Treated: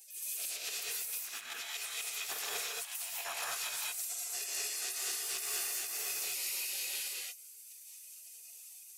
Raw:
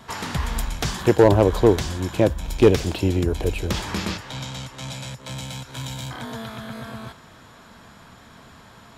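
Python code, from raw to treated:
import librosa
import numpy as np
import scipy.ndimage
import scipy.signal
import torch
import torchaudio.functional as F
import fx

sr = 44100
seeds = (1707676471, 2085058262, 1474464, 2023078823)

y = fx.highpass(x, sr, hz=51.0, slope=6)
y = fx.spec_gate(y, sr, threshold_db=-30, keep='weak')
y = fx.tilt_eq(y, sr, slope=2.5)
y = fx.over_compress(y, sr, threshold_db=-43.0, ratio=-0.5)
y = fx.small_body(y, sr, hz=(440.0, 690.0, 2500.0), ring_ms=25, db=10)
y = 10.0 ** (-31.5 / 20.0) * np.tanh(y / 10.0 ** (-31.5 / 20.0))
y = fx.rev_gated(y, sr, seeds[0], gate_ms=250, shape='rising', drr_db=-4.0)
y = fx.attack_slew(y, sr, db_per_s=130.0)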